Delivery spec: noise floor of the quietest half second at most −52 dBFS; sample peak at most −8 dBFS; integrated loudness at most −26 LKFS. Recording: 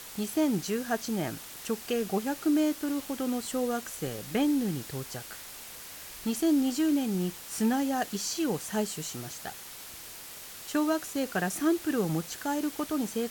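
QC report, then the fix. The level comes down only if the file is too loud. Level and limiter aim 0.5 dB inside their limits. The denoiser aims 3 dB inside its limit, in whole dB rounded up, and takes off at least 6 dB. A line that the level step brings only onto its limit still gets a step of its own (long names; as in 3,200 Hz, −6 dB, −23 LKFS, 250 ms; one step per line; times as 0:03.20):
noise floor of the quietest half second −45 dBFS: out of spec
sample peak −16.0 dBFS: in spec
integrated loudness −30.5 LKFS: in spec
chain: broadband denoise 10 dB, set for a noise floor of −45 dBFS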